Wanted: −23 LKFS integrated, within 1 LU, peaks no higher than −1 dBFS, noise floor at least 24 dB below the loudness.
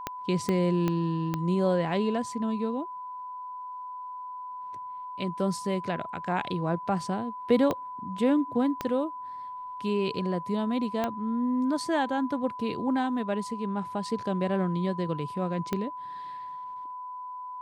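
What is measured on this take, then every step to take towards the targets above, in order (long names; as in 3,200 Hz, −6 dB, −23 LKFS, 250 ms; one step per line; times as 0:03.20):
number of clicks 8; interfering tone 1,000 Hz; level of the tone −36 dBFS; integrated loudness −30.0 LKFS; sample peak −11.5 dBFS; target loudness −23.0 LKFS
→ click removal
notch filter 1,000 Hz, Q 30
level +7 dB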